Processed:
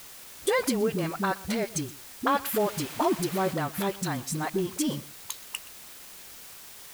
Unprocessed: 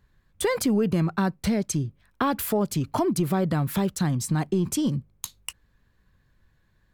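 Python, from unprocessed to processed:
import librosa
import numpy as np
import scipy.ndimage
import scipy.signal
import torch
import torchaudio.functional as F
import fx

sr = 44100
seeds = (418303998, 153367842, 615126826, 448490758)

p1 = fx.high_shelf(x, sr, hz=4100.0, db=8.0)
p2 = fx.dmg_noise_colour(p1, sr, seeds[0], colour='white', level_db=-37.0, at=(2.52, 3.46), fade=0.02)
p3 = fx.bass_treble(p2, sr, bass_db=-12, treble_db=-10)
p4 = fx.dispersion(p3, sr, late='highs', ms=64.0, hz=350.0)
p5 = fx.quant_dither(p4, sr, seeds[1], bits=6, dither='triangular')
p6 = p4 + (p5 * 10.0 ** (-7.5 / 20.0))
p7 = p6 + 10.0 ** (-20.0 / 20.0) * np.pad(p6, (int(123 * sr / 1000.0), 0))[:len(p6)]
y = p7 * 10.0 ** (-2.5 / 20.0)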